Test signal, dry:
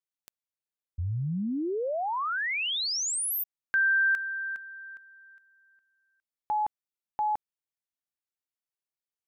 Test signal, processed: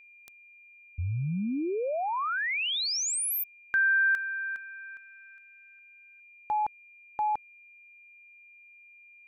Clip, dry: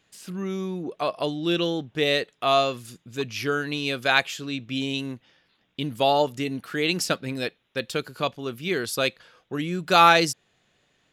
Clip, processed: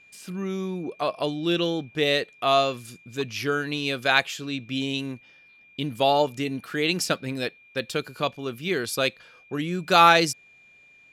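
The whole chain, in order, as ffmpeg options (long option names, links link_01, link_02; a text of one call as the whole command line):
ffmpeg -i in.wav -af "aeval=exprs='val(0)+0.00251*sin(2*PI*2400*n/s)':channel_layout=same" out.wav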